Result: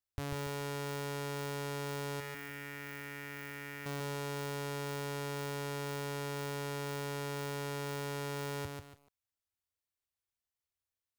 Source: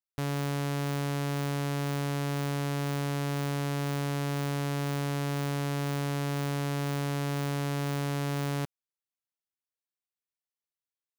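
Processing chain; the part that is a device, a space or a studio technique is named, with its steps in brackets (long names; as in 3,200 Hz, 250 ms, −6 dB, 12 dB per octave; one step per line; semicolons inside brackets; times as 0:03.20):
car stereo with a boomy subwoofer (low shelf with overshoot 120 Hz +8 dB, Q 3; brickwall limiter −28.5 dBFS, peak gain reduction 8 dB)
0:02.20–0:03.86: octave-band graphic EQ 125/500/1,000/2,000/4,000/8,000 Hz −11/−11/−10/+10/−12/−8 dB
feedback echo at a low word length 143 ms, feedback 35%, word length 10 bits, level −4 dB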